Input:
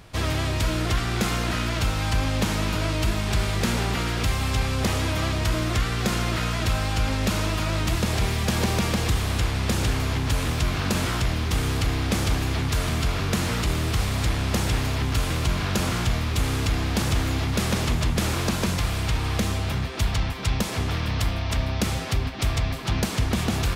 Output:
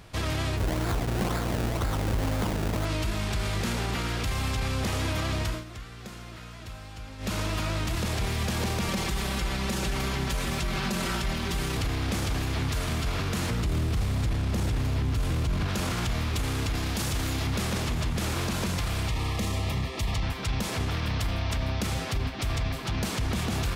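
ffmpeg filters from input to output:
-filter_complex "[0:a]asplit=3[a][b][c];[a]afade=t=out:st=0.56:d=0.02[d];[b]acrusher=samples=29:mix=1:aa=0.000001:lfo=1:lforange=29:lforate=2,afade=t=in:st=0.56:d=0.02,afade=t=out:st=2.84:d=0.02[e];[c]afade=t=in:st=2.84:d=0.02[f];[d][e][f]amix=inputs=3:normalize=0,asettb=1/sr,asplit=3[g][h][i];[g]atrim=end=8.884[j];[h]atrim=start=8.88:end=11.77,asetpts=PTS-STARTPTS,afade=t=in:d=0.004:c=qsin,afade=t=out:st=2.886:d=0.004:c=qsin,aecho=1:1:5.2:0.88,atrim=end_sample=127449[k];[i]atrim=start=11.766[l];[j][k]acrossfade=d=0.004:c1=hsin:c2=qsin[m];[m][l]acrossfade=d=0.004:c1=qsin:c2=hsin,asettb=1/sr,asplit=3[n][o][p];[n]atrim=end=13.504[q];[o]atrim=start=13.5:end=15.68,asetpts=PTS-STARTPTS,afade=t=in:d=0.004:c=qsin,afade=t=out:st=2.176:d=0.004:c=qsin,lowshelf=f=460:g=9[r];[p]atrim=start=15.676[s];[q][r]acrossfade=d=0.004:c1=hsin:c2=qsin[t];[t][s]acrossfade=d=0.004:c1=qsin:c2=hsin,asettb=1/sr,asplit=3[u][v][w];[u]atrim=end=16.754[x];[v]atrim=start=16.75:end=17.47,asetpts=PTS-STARTPTS,afade=t=in:d=0.004:c=qsin,afade=t=out:st=0.716:d=0.004:c=qsin,highshelf=f=4.6k:g=7[y];[w]atrim=start=17.466[z];[x][y]acrossfade=d=0.004:c1=hsin:c2=qsin[aa];[aa][z]acrossfade=d=0.004:c1=qsin:c2=hsin,asettb=1/sr,asplit=3[ab][ac][ad];[ab]atrim=end=19.084[ae];[ac]atrim=start=19.08:end=20.23,asetpts=PTS-STARTPTS,afade=t=in:d=0.004:c=qsin,afade=t=out:st=1.146:d=0.004:c=qsin,asuperstop=centerf=1500:order=8:qfactor=4.7[af];[ad]atrim=start=20.226[ag];[ae][af]acrossfade=d=0.004:c1=hsin:c2=qsin[ah];[ah][ag]acrossfade=d=0.004:c1=qsin:c2=hsin,asplit=3[ai][aj][ak];[ai]atrim=end=5.64,asetpts=PTS-STARTPTS,afade=t=out:st=5.39:d=0.25:silence=0.158489[al];[aj]atrim=start=5.64:end=7.18,asetpts=PTS-STARTPTS,volume=-16dB[am];[ak]atrim=start=7.18,asetpts=PTS-STARTPTS,afade=t=in:d=0.25:silence=0.158489[an];[al][am][an]concat=n=3:v=0:a=1,alimiter=limit=-19dB:level=0:latency=1:release=25,volume=-1.5dB"

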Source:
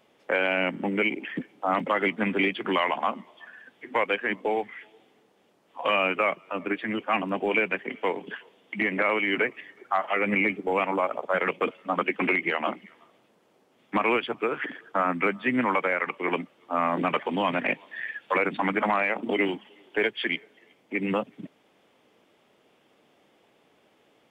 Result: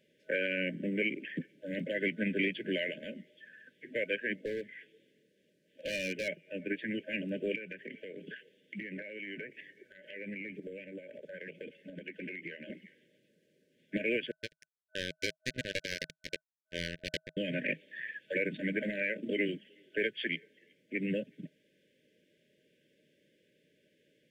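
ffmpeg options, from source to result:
-filter_complex "[0:a]asettb=1/sr,asplit=3[a][b][c];[a]atrim=end=4.454[d];[b]atrim=start=4.45:end=6.28,asetpts=PTS-STARTPTS,afade=t=in:d=0.004:c=qsin,afade=t=out:st=1.826:d=0.004:c=qsin,asoftclip=type=hard:threshold=-23.5dB[e];[c]atrim=start=6.276[f];[d][e]acrossfade=d=0.004:c1=hsin:c2=qsin[g];[g][f]acrossfade=d=0.004:c1=qsin:c2=hsin,asettb=1/sr,asplit=3[h][i][j];[h]atrim=end=7.554[k];[i]atrim=start=7.55:end=12.7,asetpts=PTS-STARTPTS,afade=t=in:d=0.004:c=qsin,afade=t=out:st=5.146:d=0.004:c=qsin,acompressor=threshold=-31dB:ratio=12:attack=3.2:release=140:knee=1:detection=peak[l];[j]atrim=start=12.696[m];[k][l]acrossfade=d=0.004:c1=hsin:c2=qsin[n];[n][m]acrossfade=d=0.004:c1=qsin:c2=hsin,asettb=1/sr,asplit=3[o][p][q];[o]atrim=end=14.314[r];[p]atrim=start=14.31:end=17.37,asetpts=PTS-STARTPTS,afade=t=in:d=0.004:c=qsin,afade=t=out:st=3.056:d=0.004:c=qsin,acrusher=bits=2:mix=0:aa=0.5[s];[q]atrim=start=17.366[t];[r][s]acrossfade=d=0.004:c1=hsin:c2=qsin[u];[u][t]acrossfade=d=0.004:c1=qsin:c2=hsin,afftfilt=real='re*(1-between(b*sr/4096,630,1500))':imag='im*(1-between(b*sr/4096,630,1500))':win_size=4096:overlap=0.75,equalizer=f=160:w=3.6:g=7.5,volume=-7dB"

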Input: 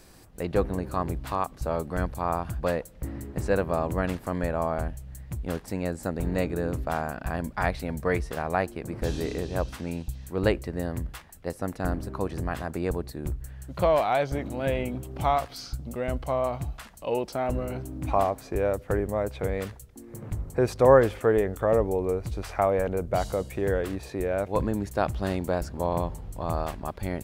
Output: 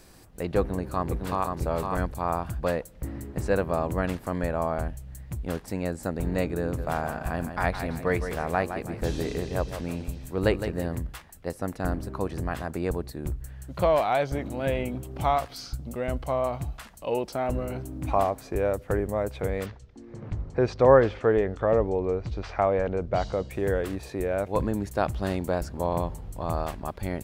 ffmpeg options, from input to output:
-filter_complex "[0:a]asplit=2[a][b];[b]afade=t=in:st=0.6:d=0.01,afade=t=out:st=1.55:d=0.01,aecho=0:1:510|1020:0.630957|0.0630957[c];[a][c]amix=inputs=2:normalize=0,asplit=3[d][e][f];[d]afade=t=out:st=6.77:d=0.02[g];[e]aecho=1:1:162|324|486|648:0.355|0.124|0.0435|0.0152,afade=t=in:st=6.77:d=0.02,afade=t=out:st=10.94:d=0.02[h];[f]afade=t=in:st=10.94:d=0.02[i];[g][h][i]amix=inputs=3:normalize=0,asettb=1/sr,asplit=3[j][k][l];[j]atrim=end=19.664[m];[k]atrim=start=19.66:end=23.51,asetpts=PTS-STARTPTS,afade=t=in:d=0.004:c=qsin,afade=t=out:st=3.846:d=0.004:c=qsin,lowpass=f=5.5k:w=0.5412,lowpass=f=5.5k:w=1.3066[n];[l]atrim=start=23.506[o];[m][n]acrossfade=d=0.004:c1=hsin:c2=qsin[p];[p][o]acrossfade=d=0.004:c1=qsin:c2=hsin"

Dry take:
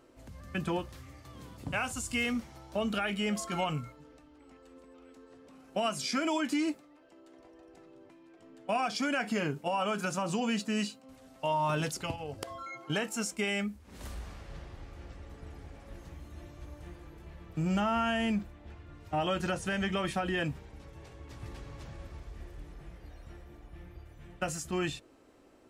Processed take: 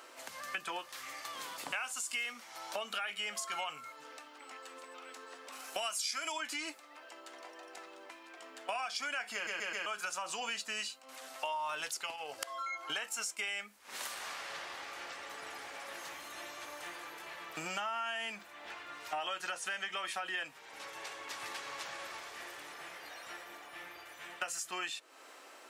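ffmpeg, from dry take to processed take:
-filter_complex "[0:a]asettb=1/sr,asplit=3[a][b][c];[a]atrim=end=5.524[d];[b]atrim=start=5.52:end=6.32,asetpts=PTS-STARTPTS,afade=t=in:d=0.004:c=qsin,afade=t=out:st=0.796:d=0.004:c=qsin,highshelf=f=4.9k:g=11[e];[c]atrim=start=6.316[f];[d][e]acrossfade=d=0.004:c1=hsin:c2=qsin[g];[g][f]acrossfade=d=0.004:c1=qsin:c2=hsin,asplit=5[h][i][j][k][l];[h]atrim=end=9.472[m];[i]atrim=start=9.338:end=9.472[n];[j]atrim=start=9.338:end=9.472[o];[k]atrim=start=9.338:end=9.472[p];[l]atrim=start=9.858[q];[m][n]acrossfade=d=0.004:c1=hsin:c2=hsin[r];[r][o]acrossfade=d=0.004:c1=hsin:c2=hsin[s];[s][p]acrossfade=d=0.004:c1=hsin:c2=hsin[t];[t][q]acrossfade=d=0.004:c1=hsin:c2=hsin,highpass=1k,acompressor=threshold=-54dB:ratio=4,volume=15dB"

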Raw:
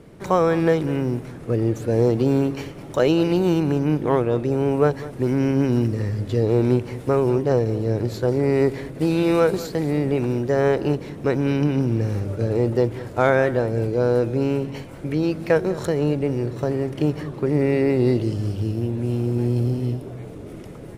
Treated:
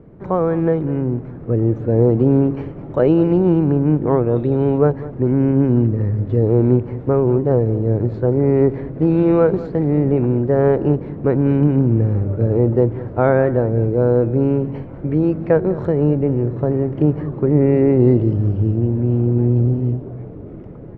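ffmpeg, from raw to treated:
-filter_complex "[0:a]asettb=1/sr,asplit=3[a][b][c];[a]atrim=end=4.364[d];[b]atrim=start=4.36:end=4.78,asetpts=PTS-STARTPTS,afade=t=in:d=0.004:c=qsin,afade=t=out:st=0.416:d=0.004:c=qsin,lowpass=f=3.8k:t=q:w=8.3[e];[c]atrim=start=4.776[f];[d][e]acrossfade=d=0.004:c1=hsin:c2=qsin[g];[g][f]acrossfade=d=0.004:c1=qsin:c2=hsin,lowpass=1.4k,lowshelf=f=450:g=6.5,dynaudnorm=f=350:g=9:m=11.5dB,volume=-2.5dB"

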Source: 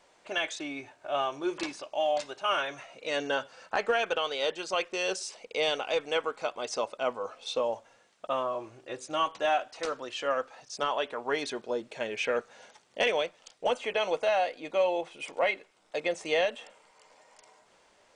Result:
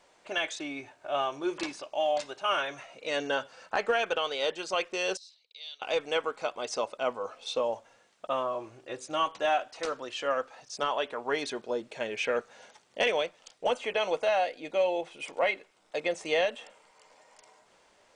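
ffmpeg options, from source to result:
-filter_complex "[0:a]asettb=1/sr,asplit=3[a][b][c];[a]atrim=end=5.174[d];[b]atrim=start=5.17:end=5.82,asetpts=PTS-STARTPTS,afade=t=in:d=0.004:c=qsin,afade=t=out:st=0.646:d=0.004:c=qsin,bandpass=f=4k:t=q:w=9.3[e];[c]atrim=start=5.816[f];[d][e]acrossfade=d=0.004:c1=hsin:c2=qsin[g];[g][f]acrossfade=d=0.004:c1=qsin:c2=hsin,asettb=1/sr,asplit=3[h][i][j];[h]atrim=end=14.454[k];[i]atrim=start=14.45:end=15.08,asetpts=PTS-STARTPTS,afade=t=in:d=0.004:c=qsin,afade=t=out:st=0.626:d=0.004:c=qsin,equalizer=f=1.1k:t=o:w=0.45:g=-6.5[l];[j]atrim=start=15.076[m];[k][l]acrossfade=d=0.004:c1=hsin:c2=qsin[n];[n][m]acrossfade=d=0.004:c1=qsin:c2=hsin"

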